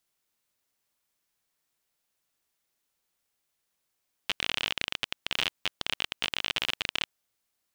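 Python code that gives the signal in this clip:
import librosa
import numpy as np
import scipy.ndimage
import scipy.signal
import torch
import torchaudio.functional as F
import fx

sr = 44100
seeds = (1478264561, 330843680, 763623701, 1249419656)

y = fx.geiger_clicks(sr, seeds[0], length_s=2.77, per_s=34.0, level_db=-10.5)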